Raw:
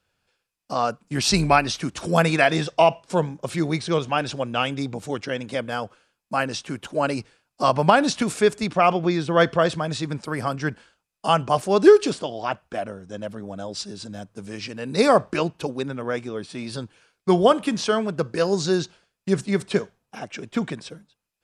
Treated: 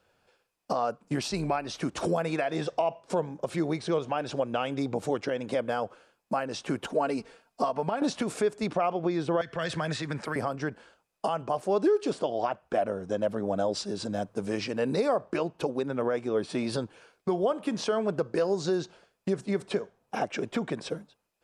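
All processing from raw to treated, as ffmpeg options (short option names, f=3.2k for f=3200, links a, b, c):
-filter_complex "[0:a]asettb=1/sr,asplit=3[a][b][c];[a]atrim=end=6.864[d];[b]atrim=start=6.86:end=8.02,asetpts=PTS-STARTPTS,afade=t=in:d=0.004:c=qsin,afade=t=out:st=1.156:d=0.004:c=qsin,aecho=1:1:4.4:0.55,atrim=end_sample=51156,acompressor=threshold=-46dB:ratio=1.5:attack=3.2:release=140:knee=1:detection=peak[e];[c]atrim=start=8.016[f];[d][e]acrossfade=d=0.004:c1=hsin:c2=qsin[g];[g][f]acrossfade=d=0.004:c1=qsin:c2=hsin,asettb=1/sr,asplit=3[h][i][j];[h]atrim=end=9.414[k];[i]atrim=start=9.41:end=10.36,asetpts=PTS-STARTPTS,afade=t=in:d=0.004:c=qsin,afade=t=out:st=0.946:d=0.004:c=qsin,equalizer=f=1.8k:w=1.4:g=12,acrossover=split=150|3000[l][m][n];[m]acompressor=threshold=-33dB:ratio=4:attack=3.2:release=140:knee=2.83:detection=peak[o];[l][o][n]amix=inputs=3:normalize=0[p];[j]atrim=start=10.356[q];[k][p]acrossfade=d=0.004:c1=hsin:c2=qsin[r];[r][q]acrossfade=d=0.004:c1=qsin:c2=hsin,acompressor=threshold=-32dB:ratio=2,alimiter=level_in=0.5dB:limit=-24dB:level=0:latency=1:release=373,volume=-0.5dB,equalizer=f=560:t=o:w=2.5:g=10"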